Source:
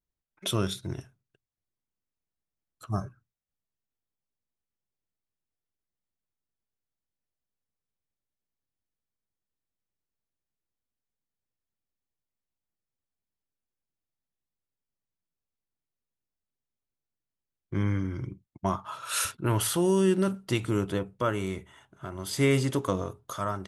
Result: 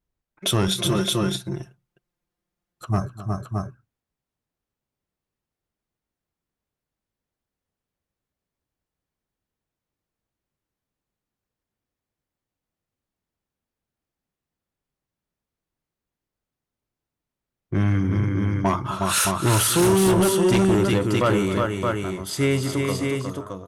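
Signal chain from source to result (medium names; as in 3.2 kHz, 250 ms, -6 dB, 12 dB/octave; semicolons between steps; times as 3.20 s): fade out at the end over 2.38 s; on a send: multi-tap echo 255/363/619 ms -17.5/-5/-5 dB; on the sum: Chebyshev shaper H 5 -9 dB, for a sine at -10.5 dBFS; 0.67–2.85 s: comb 5.7 ms, depth 78%; tape noise reduction on one side only decoder only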